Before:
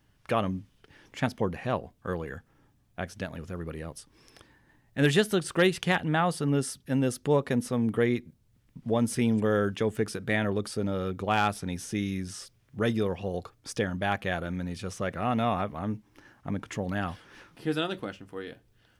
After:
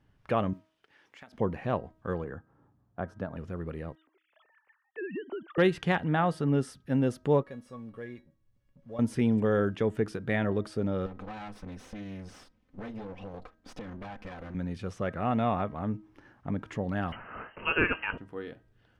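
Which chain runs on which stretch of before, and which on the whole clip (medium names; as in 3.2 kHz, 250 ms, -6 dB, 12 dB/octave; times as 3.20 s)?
0.53–1.33 s: block-companded coder 7-bit + high-pass 1.2 kHz 6 dB/octave + compression 10:1, threshold -43 dBFS
2.24–3.37 s: high-pass 69 Hz + resonant high shelf 1.7 kHz -9 dB, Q 1.5
3.95–5.58 s: formants replaced by sine waves + compression 12:1, threshold -32 dBFS
7.43–8.99 s: companding laws mixed up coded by mu + feedback comb 560 Hz, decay 0.19 s, mix 90%
11.06–14.55 s: comb filter that takes the minimum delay 3.9 ms + treble shelf 11 kHz -11 dB + compression 5:1, threshold -37 dBFS
17.12–18.18 s: peaking EQ 2.3 kHz +14 dB 2.9 oct + frequency inversion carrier 3 kHz
whole clip: low-pass 1.7 kHz 6 dB/octave; de-hum 317.5 Hz, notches 6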